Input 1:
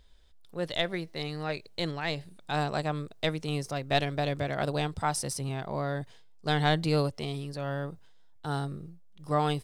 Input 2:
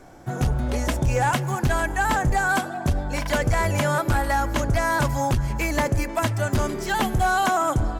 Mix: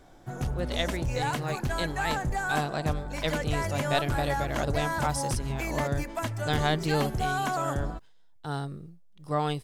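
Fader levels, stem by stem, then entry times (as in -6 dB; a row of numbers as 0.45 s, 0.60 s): -1.0 dB, -8.5 dB; 0.00 s, 0.00 s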